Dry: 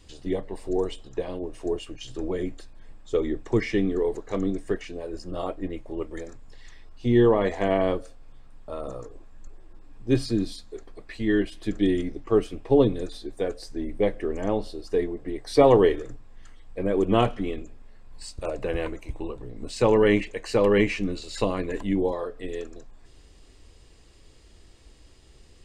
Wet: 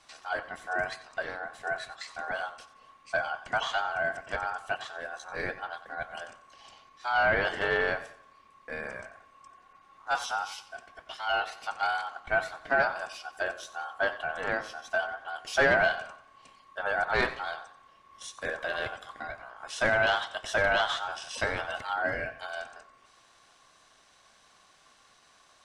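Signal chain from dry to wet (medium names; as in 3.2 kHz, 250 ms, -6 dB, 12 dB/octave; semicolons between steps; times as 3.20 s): overdrive pedal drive 16 dB, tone 5.5 kHz, clips at -4.5 dBFS; ring modulator 1.1 kHz; modulated delay 91 ms, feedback 39%, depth 75 cents, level -15 dB; trim -7 dB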